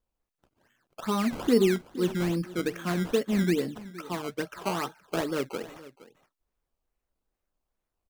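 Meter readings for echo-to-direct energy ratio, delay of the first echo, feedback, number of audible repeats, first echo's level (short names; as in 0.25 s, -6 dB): -18.0 dB, 0.467 s, no steady repeat, 1, -18.0 dB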